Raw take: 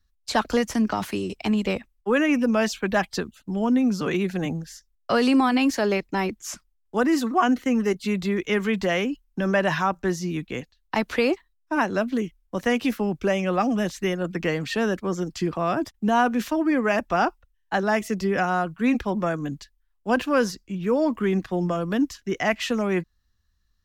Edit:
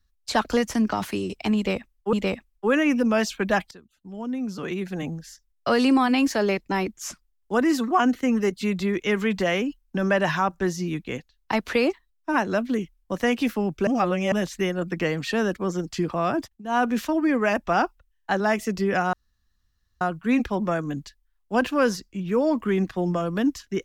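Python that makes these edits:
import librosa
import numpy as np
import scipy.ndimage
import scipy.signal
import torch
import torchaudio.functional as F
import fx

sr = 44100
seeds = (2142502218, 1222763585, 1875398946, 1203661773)

y = fx.edit(x, sr, fx.repeat(start_s=1.56, length_s=0.57, count=2),
    fx.fade_in_from(start_s=3.14, length_s=1.99, floor_db=-22.5),
    fx.reverse_span(start_s=13.3, length_s=0.45),
    fx.fade_down_up(start_s=15.81, length_s=0.5, db=-21.0, fade_s=0.24, curve='qsin'),
    fx.insert_room_tone(at_s=18.56, length_s=0.88), tone=tone)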